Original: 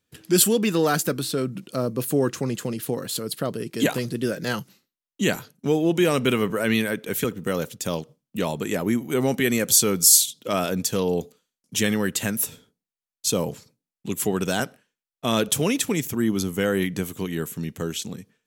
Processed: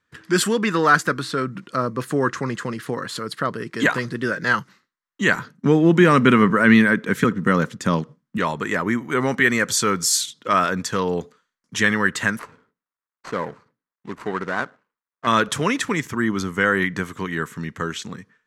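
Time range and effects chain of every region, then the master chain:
5.37–8.38 bell 200 Hz +10.5 dB 1.6 oct + short-mantissa float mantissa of 6-bit
12.39–15.27 median filter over 25 samples + low shelf 220 Hz -10.5 dB
whole clip: LPF 6500 Hz 12 dB/oct; band shelf 1400 Hz +12 dB 1.3 oct

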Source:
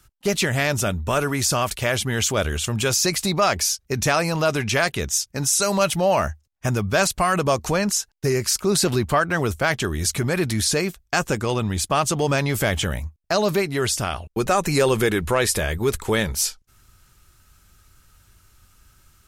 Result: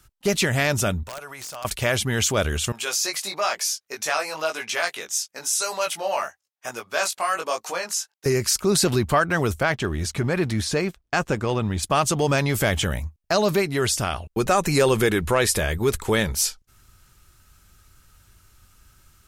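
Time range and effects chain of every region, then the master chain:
1.03–1.65 resonant low shelf 420 Hz -12 dB, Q 1.5 + compressor 2.5:1, threshold -40 dBFS + wrapped overs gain 26.5 dB
2.72–8.26 HPF 600 Hz + chorus 1 Hz, delay 17 ms, depth 3.3 ms
9.63–11.83 G.711 law mismatch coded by A + LPF 3000 Hz 6 dB/oct
whole clip: dry

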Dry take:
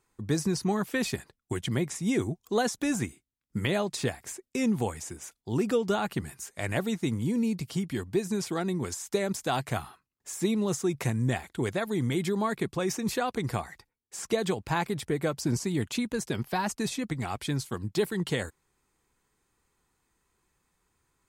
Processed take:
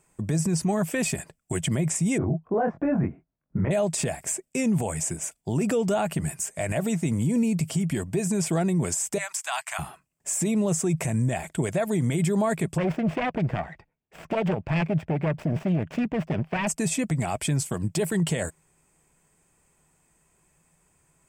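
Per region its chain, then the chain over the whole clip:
2.18–3.71 LPF 1500 Hz 24 dB/oct + doubler 22 ms -2.5 dB
9.18–9.79 inverse Chebyshev high-pass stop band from 480 Hz + high shelf 10000 Hz -6.5 dB
12.78–16.67 self-modulated delay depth 0.64 ms + air absorption 340 m
whole clip: thirty-one-band EQ 160 Hz +12 dB, 630 Hz +11 dB, 1250 Hz -3 dB, 2500 Hz +4 dB, 4000 Hz -9 dB, 8000 Hz +11 dB; limiter -22.5 dBFS; gain +5.5 dB

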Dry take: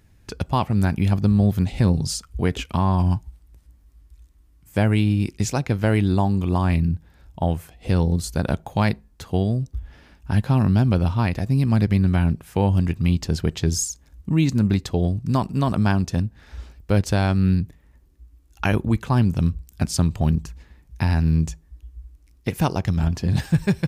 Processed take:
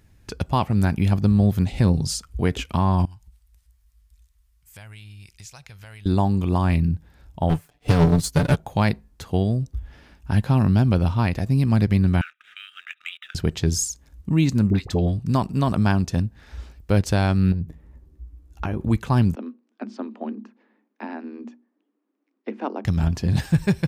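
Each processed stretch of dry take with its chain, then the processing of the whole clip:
3.05–6.06 passive tone stack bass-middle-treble 10-0-10 + compressor 3:1, threshold -42 dBFS + core saturation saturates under 240 Hz
7.49–8.56 sample leveller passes 3 + comb 6.9 ms, depth 75% + upward expander 2.5:1, over -26 dBFS
12.21–13.35 brick-wall FIR band-pass 1200–3900 Hz + sample leveller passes 1
14.7–15.25 high shelf 5300 Hz -5 dB + dispersion highs, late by 48 ms, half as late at 880 Hz
17.52–18.81 tilt shelf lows +6.5 dB, about 1200 Hz + compressor 4:1, threshold -24 dBFS + doubler 13 ms -9 dB
19.35–22.85 Chebyshev high-pass 210 Hz, order 10 + tape spacing loss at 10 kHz 43 dB + notches 60/120/180/240/300/360 Hz
whole clip: dry

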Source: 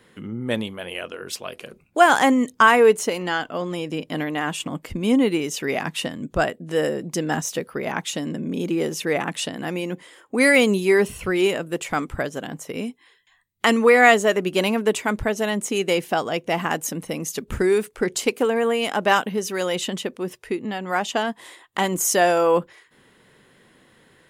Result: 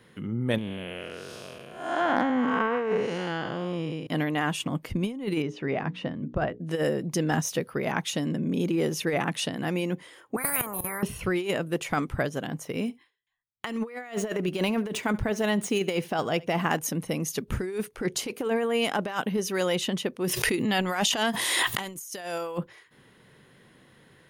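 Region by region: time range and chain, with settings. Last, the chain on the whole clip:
0.58–4.07 time blur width 0.307 s + treble ducked by the level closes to 2600 Hz, closed at -18 dBFS + overloaded stage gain 10.5 dB
5.42–6.6 de-esser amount 55% + tape spacing loss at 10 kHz 29 dB + notches 60/120/180/240/300/360/420/480 Hz
10.36–11.03 EQ curve 230 Hz 0 dB, 350 Hz -6 dB, 650 Hz +10 dB, 1100 Hz +9 dB, 1800 Hz -5 dB, 2700 Hz -29 dB, 5800 Hz -30 dB, 10000 Hz -2 dB, 15000 Hz +13 dB + level quantiser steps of 14 dB + spectral compressor 10:1
12.65–16.79 median filter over 3 samples + gate with hold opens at -42 dBFS, closes at -53 dBFS + echo 71 ms -23.5 dB
20.24–22.58 high shelf 2500 Hz +11.5 dB + backwards sustainer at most 24 dB/s
whole clip: bell 130 Hz +6 dB 1 oct; notch 7600 Hz, Q 5.9; negative-ratio compressor -21 dBFS, ratio -0.5; gain -4.5 dB

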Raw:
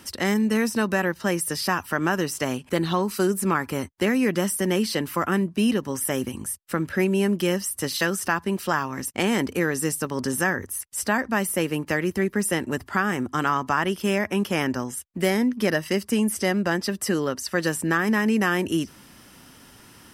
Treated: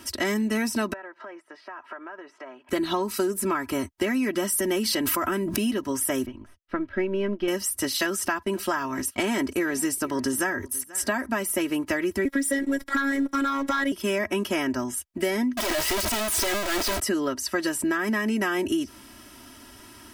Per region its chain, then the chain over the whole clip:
0.93–2.69 compressor 12:1, threshold -33 dBFS + Butterworth band-pass 930 Hz, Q 0.64
4.52–5.73 high shelf 12000 Hz +5.5 dB + backwards sustainer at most 28 dB/s
6.26–7.48 half-wave gain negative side -3 dB + air absorption 280 m + upward expander, over -37 dBFS
8.05–11.26 gate -39 dBFS, range -15 dB + echo 0.484 s -23.5 dB
12.25–13.92 robotiser 275 Hz + sample leveller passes 2 + small resonant body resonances 500/2000 Hz, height 8 dB
15.57–17 infinite clipping + bell 190 Hz -11 dB 1.1 oct + transient shaper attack -10 dB, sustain +12 dB
whole clip: comb 3.1 ms, depth 79%; compressor, threshold -22 dBFS

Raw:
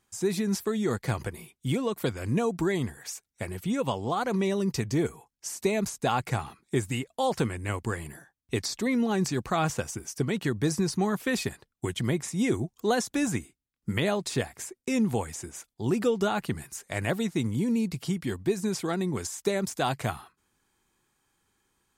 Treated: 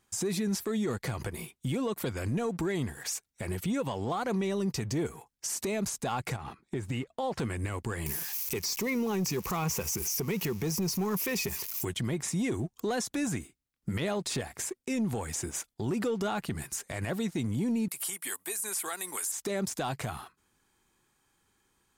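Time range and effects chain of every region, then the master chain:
6.36–7.4 LPF 2400 Hz 6 dB/oct + compressor 2.5:1, threshold -37 dBFS
8.06–11.85 switching spikes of -32 dBFS + ripple EQ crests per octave 0.8, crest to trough 9 dB
17.88–19.32 HPF 990 Hz + resonant high shelf 7300 Hz +13.5 dB, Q 1.5 + three-band squash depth 40%
whole clip: sample leveller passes 1; compressor 4:1, threshold -30 dBFS; limiter -27 dBFS; gain +3 dB

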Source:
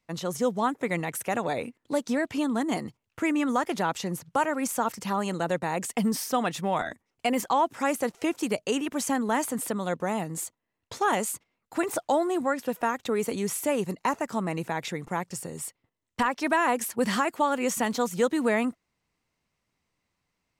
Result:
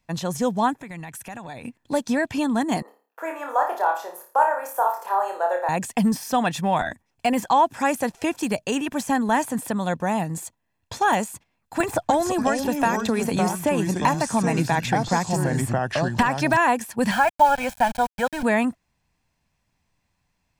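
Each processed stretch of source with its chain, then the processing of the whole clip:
0.73–1.65 bell 520 Hz -5.5 dB 1.1 oct + compressor 3:1, threshold -41 dBFS
2.82–5.69 steep high-pass 440 Hz + band shelf 4400 Hz -15.5 dB 2.6 oct + flutter echo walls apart 4.8 m, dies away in 0.39 s
11.8–16.57 echoes that change speed 0.29 s, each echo -4 st, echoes 2, each echo -6 dB + three-band squash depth 100%
17.11–18.43 tone controls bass -14 dB, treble -15 dB + sample gate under -36 dBFS + comb 1.3 ms, depth 95%
whole clip: de-esser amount 65%; low shelf 110 Hz +6 dB; comb 1.2 ms, depth 40%; gain +4 dB

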